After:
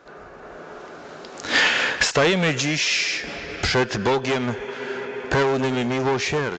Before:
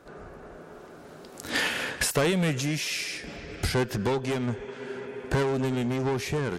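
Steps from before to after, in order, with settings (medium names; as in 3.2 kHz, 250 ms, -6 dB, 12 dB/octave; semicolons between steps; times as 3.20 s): overdrive pedal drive 10 dB, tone 5.8 kHz, clips at -11.5 dBFS; level rider gain up to 5.5 dB; resampled via 16 kHz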